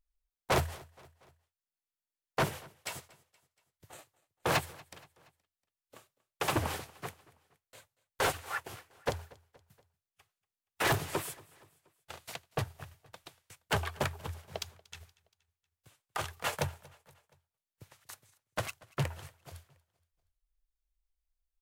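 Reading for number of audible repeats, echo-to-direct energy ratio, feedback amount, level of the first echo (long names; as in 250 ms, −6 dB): 3, −22.0 dB, 52%, −23.5 dB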